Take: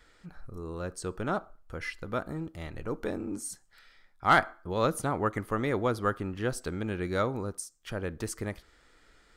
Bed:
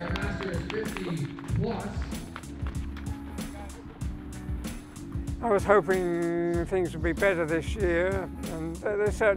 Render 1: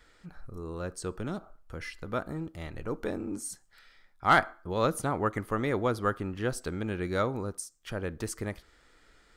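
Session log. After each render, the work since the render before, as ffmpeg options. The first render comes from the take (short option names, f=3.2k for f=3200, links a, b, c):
-filter_complex "[0:a]asettb=1/sr,asplit=3[a][b][c];[a]atrim=end=1.114[d];[b]atrim=start=1.11:end=2.04,asetpts=PTS-STARTPTS,afade=t=in:d=0.004:c=qsin,afade=t=out:st=0.926:d=0.004:c=qsin,acrossover=split=380|3000[e][f][g];[f]acompressor=threshold=-40dB:ratio=6:attack=3.2:release=140:knee=2.83:detection=peak[h];[e][h][g]amix=inputs=3:normalize=0[i];[c]atrim=start=2.036[j];[d][i]acrossfade=d=0.004:c1=hsin:c2=qsin[k];[k][j]acrossfade=d=0.004:c1=qsin:c2=hsin"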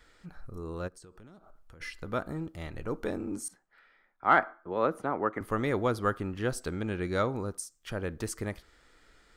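-filter_complex "[0:a]asplit=3[a][b][c];[a]afade=t=out:st=0.87:d=0.02[d];[b]acompressor=threshold=-49dB:ratio=8:attack=3.2:release=140:knee=1:detection=peak,afade=t=in:st=0.87:d=0.02,afade=t=out:st=1.8:d=0.02[e];[c]afade=t=in:st=1.8:d=0.02[f];[d][e][f]amix=inputs=3:normalize=0,asettb=1/sr,asplit=3[g][h][i];[g]atrim=end=3.484[j];[h]atrim=start=3.48:end=5.41,asetpts=PTS-STARTPTS,afade=t=in:d=0.004:c=qsin,afade=t=out:st=1.926:d=0.004:c=qsin,acrossover=split=200 2500:gain=0.158 1 0.1[k][l][m];[k][l][m]amix=inputs=3:normalize=0[n];[i]atrim=start=5.406[o];[j][n]acrossfade=d=0.004:c1=hsin:c2=qsin[p];[p][o]acrossfade=d=0.004:c1=qsin:c2=hsin,asettb=1/sr,asplit=3[q][r][s];[q]atrim=end=6.764[t];[r]atrim=start=6.76:end=7.38,asetpts=PTS-STARTPTS,afade=t=in:d=0.004:c=qsin,afade=t=out:st=0.616:d=0.004:c=qsin,lowpass=11k[u];[s]atrim=start=7.376[v];[t][u]acrossfade=d=0.004:c1=hsin:c2=qsin[w];[w][v]acrossfade=d=0.004:c1=qsin:c2=hsin"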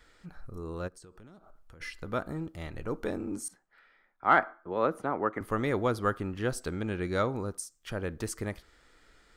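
-af anull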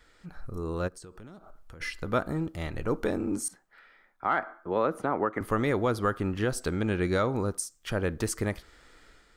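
-af "dynaudnorm=f=130:g=5:m=5.5dB,alimiter=limit=-15.5dB:level=0:latency=1:release=181"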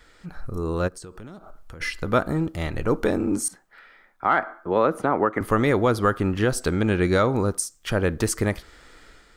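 -af "volume=6.5dB"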